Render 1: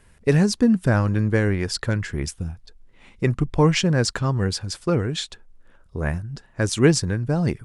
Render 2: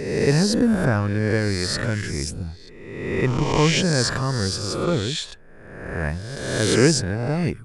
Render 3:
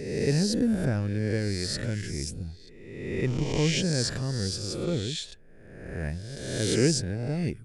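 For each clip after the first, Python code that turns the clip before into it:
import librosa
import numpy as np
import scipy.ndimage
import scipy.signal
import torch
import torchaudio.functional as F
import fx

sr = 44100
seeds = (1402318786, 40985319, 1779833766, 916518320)

y1 = fx.spec_swells(x, sr, rise_s=1.19)
y1 = F.gain(torch.from_numpy(y1), -2.5).numpy()
y2 = fx.peak_eq(y1, sr, hz=1100.0, db=-14.0, octaves=1.0)
y2 = F.gain(torch.from_numpy(y2), -5.5).numpy()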